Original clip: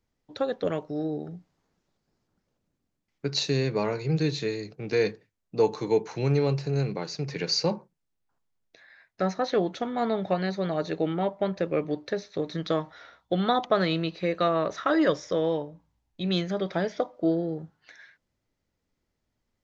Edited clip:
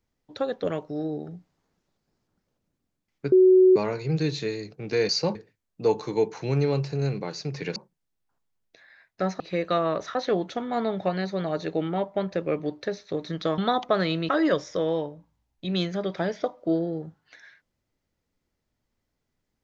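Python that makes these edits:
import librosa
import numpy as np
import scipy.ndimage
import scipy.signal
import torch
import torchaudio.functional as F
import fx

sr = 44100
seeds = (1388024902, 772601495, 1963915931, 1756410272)

y = fx.edit(x, sr, fx.bleep(start_s=3.32, length_s=0.44, hz=372.0, db=-12.0),
    fx.move(start_s=7.5, length_s=0.26, to_s=5.09),
    fx.cut(start_s=12.83, length_s=0.56),
    fx.move(start_s=14.1, length_s=0.75, to_s=9.4), tone=tone)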